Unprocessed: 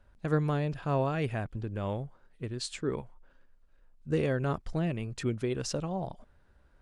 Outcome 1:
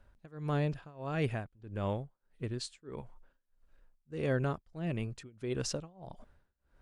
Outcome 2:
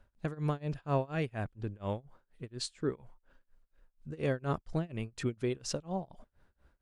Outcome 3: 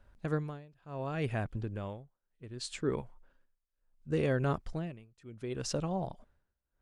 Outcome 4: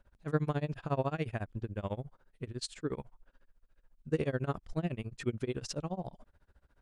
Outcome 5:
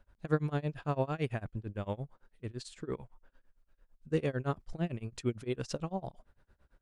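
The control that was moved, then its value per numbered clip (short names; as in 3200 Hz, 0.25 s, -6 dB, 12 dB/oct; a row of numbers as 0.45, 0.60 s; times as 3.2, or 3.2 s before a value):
tremolo, rate: 1.6, 4.2, 0.68, 14, 8.9 Hz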